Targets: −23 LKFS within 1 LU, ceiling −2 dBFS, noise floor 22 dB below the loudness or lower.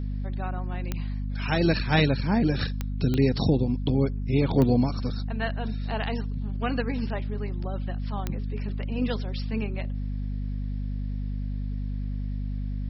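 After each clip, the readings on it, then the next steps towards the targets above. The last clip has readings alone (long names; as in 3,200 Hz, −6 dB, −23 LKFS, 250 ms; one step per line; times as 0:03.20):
number of clicks 5; mains hum 50 Hz; hum harmonics up to 250 Hz; level of the hum −27 dBFS; integrated loudness −28.0 LKFS; sample peak −8.5 dBFS; target loudness −23.0 LKFS
→ click removal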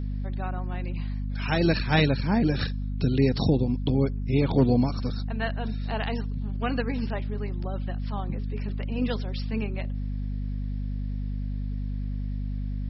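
number of clicks 0; mains hum 50 Hz; hum harmonics up to 250 Hz; level of the hum −27 dBFS
→ mains-hum notches 50/100/150/200/250 Hz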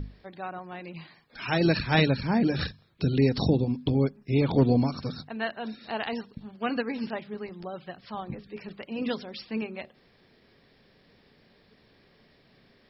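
mains hum none found; integrated loudness −28.0 LKFS; sample peak −8.5 dBFS; target loudness −23.0 LKFS
→ level +5 dB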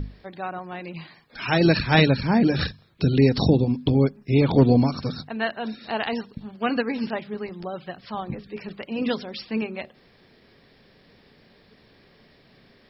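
integrated loudness −23.0 LKFS; sample peak −3.5 dBFS; background noise floor −57 dBFS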